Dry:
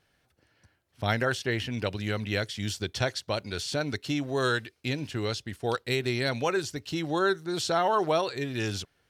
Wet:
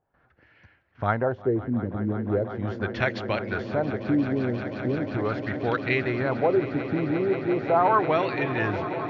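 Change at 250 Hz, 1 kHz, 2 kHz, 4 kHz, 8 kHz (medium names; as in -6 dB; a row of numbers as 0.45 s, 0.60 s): +6.0 dB, +4.5 dB, +1.5 dB, -10.0 dB, under -20 dB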